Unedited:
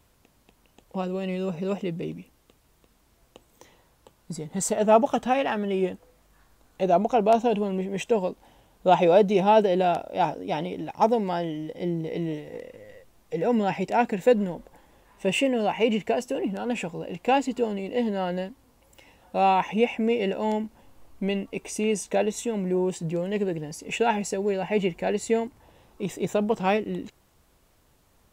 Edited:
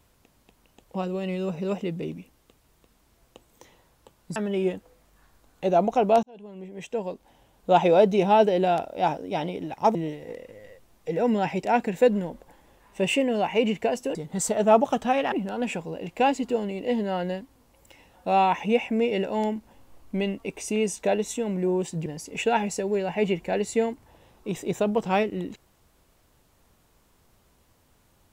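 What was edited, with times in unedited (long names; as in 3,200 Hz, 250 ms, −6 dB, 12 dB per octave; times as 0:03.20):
0:04.36–0:05.53: move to 0:16.40
0:07.40–0:08.93: fade in
0:11.12–0:12.20: remove
0:23.14–0:23.60: remove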